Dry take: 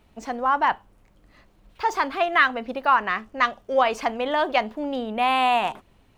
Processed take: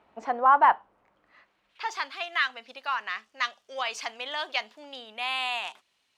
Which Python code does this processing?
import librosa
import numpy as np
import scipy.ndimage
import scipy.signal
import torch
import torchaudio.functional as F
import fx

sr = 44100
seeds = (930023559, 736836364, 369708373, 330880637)

y = fx.rider(x, sr, range_db=4, speed_s=2.0)
y = fx.filter_sweep_bandpass(y, sr, from_hz=950.0, to_hz=5000.0, start_s=1.02, end_s=2.18, q=0.95)
y = y * librosa.db_to_amplitude(2.0)